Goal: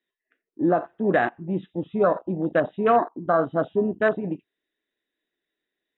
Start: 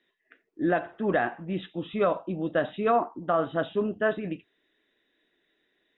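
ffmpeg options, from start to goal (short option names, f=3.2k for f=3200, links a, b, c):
-af "afwtdn=0.0282,volume=4.5dB"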